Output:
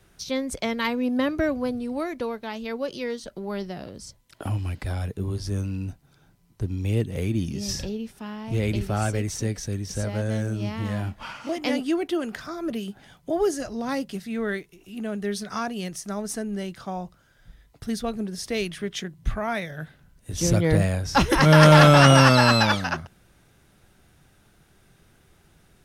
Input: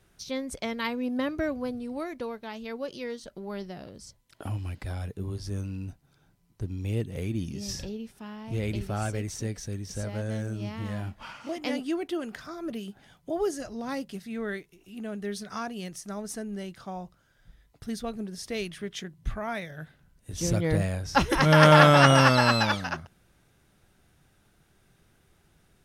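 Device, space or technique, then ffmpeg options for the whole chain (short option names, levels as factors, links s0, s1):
one-band saturation: -filter_complex "[0:a]acrossover=split=300|3700[s0][s1][s2];[s1]asoftclip=type=tanh:threshold=0.15[s3];[s0][s3][s2]amix=inputs=3:normalize=0,volume=1.88"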